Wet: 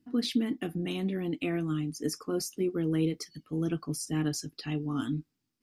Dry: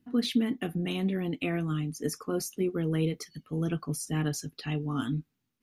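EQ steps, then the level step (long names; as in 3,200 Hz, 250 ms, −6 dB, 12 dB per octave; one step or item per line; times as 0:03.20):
thirty-one-band graphic EQ 315 Hz +7 dB, 5,000 Hz +8 dB, 8,000 Hz +5 dB
−3.0 dB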